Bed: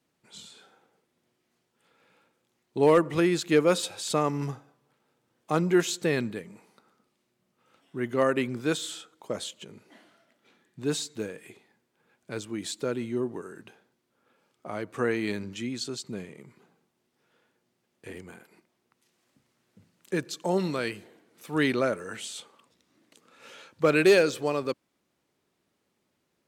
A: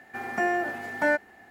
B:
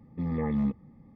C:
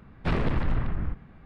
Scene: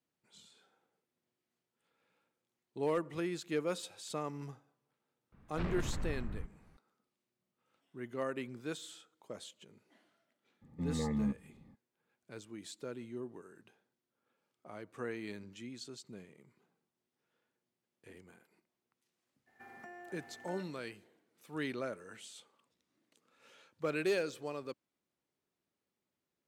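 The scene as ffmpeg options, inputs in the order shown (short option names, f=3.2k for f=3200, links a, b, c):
-filter_complex "[0:a]volume=-13.5dB[a];[1:a]acompressor=threshold=-37dB:ratio=4:attack=61:release=29:knee=6:detection=rms[b];[3:a]atrim=end=1.45,asetpts=PTS-STARTPTS,volume=-12.5dB,afade=t=in:d=0.004:c=hsin,afade=t=out:st=1.446:d=0.004:c=hsin,adelay=5320[c];[2:a]atrim=end=1.15,asetpts=PTS-STARTPTS,volume=-6dB,afade=t=in:d=0.02,afade=t=out:st=1.13:d=0.02,adelay=10610[d];[b]atrim=end=1.5,asetpts=PTS-STARTPTS,volume=-17.5dB,afade=t=in:d=0.02,afade=t=out:st=1.48:d=0.02,adelay=19460[e];[a][c][d][e]amix=inputs=4:normalize=0"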